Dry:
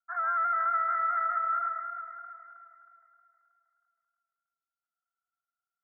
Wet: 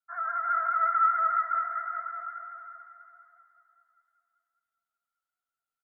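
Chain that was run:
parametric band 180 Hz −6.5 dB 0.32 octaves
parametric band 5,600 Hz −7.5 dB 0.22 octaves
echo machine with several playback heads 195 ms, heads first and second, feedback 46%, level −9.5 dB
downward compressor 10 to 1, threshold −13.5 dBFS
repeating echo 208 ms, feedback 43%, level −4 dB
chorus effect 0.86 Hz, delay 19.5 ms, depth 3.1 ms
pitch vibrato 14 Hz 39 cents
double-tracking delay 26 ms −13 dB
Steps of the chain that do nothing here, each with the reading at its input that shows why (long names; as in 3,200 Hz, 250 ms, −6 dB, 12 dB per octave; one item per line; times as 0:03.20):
parametric band 180 Hz: nothing at its input below 640 Hz
parametric band 5,600 Hz: nothing at its input above 2,000 Hz
downward compressor, threshold −13.5 dBFS: peak of its input −17.5 dBFS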